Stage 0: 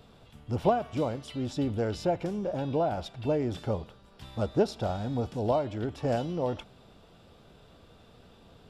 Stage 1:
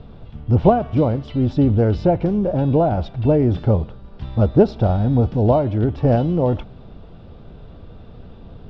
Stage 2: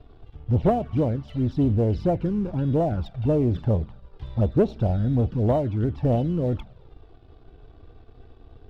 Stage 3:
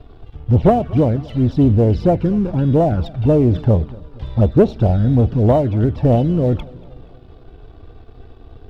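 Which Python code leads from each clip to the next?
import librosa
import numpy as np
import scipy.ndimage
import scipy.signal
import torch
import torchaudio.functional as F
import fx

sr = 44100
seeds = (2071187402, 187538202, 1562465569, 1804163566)

y1 = scipy.signal.sosfilt(scipy.signal.butter(4, 5100.0, 'lowpass', fs=sr, output='sos'), x)
y1 = fx.tilt_eq(y1, sr, slope=-3.0)
y1 = y1 * 10.0 ** (7.5 / 20.0)
y2 = fx.env_flanger(y1, sr, rest_ms=3.1, full_db=-11.0)
y2 = fx.leveller(y2, sr, passes=1)
y2 = y2 * 10.0 ** (-8.0 / 20.0)
y3 = fx.echo_feedback(y2, sr, ms=238, feedback_pct=53, wet_db=-23)
y3 = y3 * 10.0 ** (8.0 / 20.0)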